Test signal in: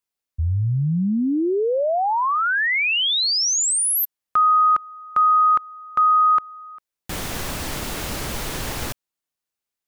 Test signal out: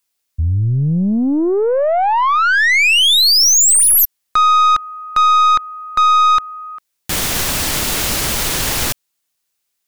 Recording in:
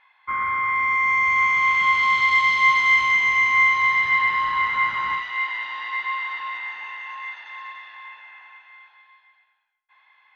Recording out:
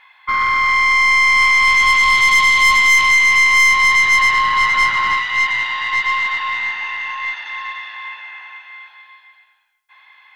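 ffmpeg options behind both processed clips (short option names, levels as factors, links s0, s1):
-af "highshelf=f=2000:g=8.5,acontrast=81,aeval=exprs='(tanh(2.51*val(0)+0.25)-tanh(0.25))/2.51':c=same"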